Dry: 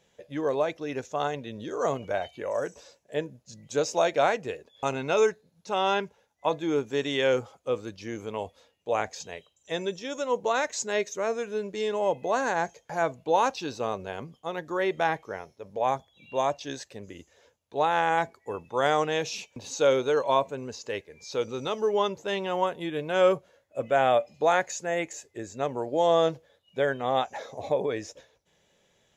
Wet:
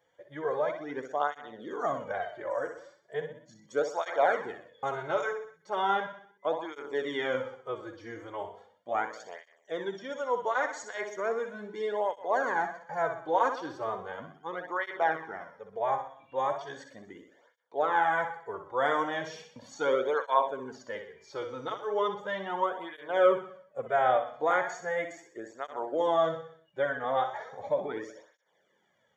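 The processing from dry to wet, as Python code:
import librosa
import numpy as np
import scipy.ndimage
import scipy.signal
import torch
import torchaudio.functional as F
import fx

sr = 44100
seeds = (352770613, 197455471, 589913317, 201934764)

p1 = scipy.signal.savgol_filter(x, 41, 4, mode='constant')
p2 = fx.tilt_eq(p1, sr, slope=3.5)
p3 = p2 + fx.echo_feedback(p2, sr, ms=62, feedback_pct=49, wet_db=-8.0, dry=0)
p4 = fx.flanger_cancel(p3, sr, hz=0.37, depth_ms=5.3)
y = p4 * 10.0 ** (1.5 / 20.0)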